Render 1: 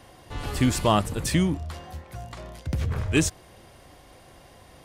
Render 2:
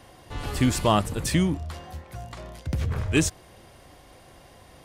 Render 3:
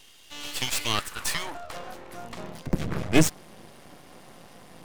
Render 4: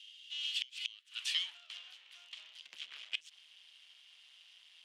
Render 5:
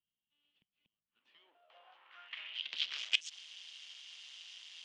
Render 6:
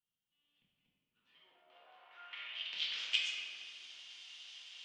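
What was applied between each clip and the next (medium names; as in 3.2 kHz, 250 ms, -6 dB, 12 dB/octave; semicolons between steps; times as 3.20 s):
no audible change
high-pass sweep 3 kHz -> 180 Hz, 0.62–2.46 s; half-wave rectifier; trim +5 dB
ladder band-pass 3.3 kHz, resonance 70%; inverted gate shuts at -24 dBFS, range -27 dB; trim +4 dB
low-pass sweep 190 Hz -> 6.5 kHz, 1.07–3.02 s; trim +6 dB
reverberation RT60 2.5 s, pre-delay 4 ms, DRR -5.5 dB; trim -5.5 dB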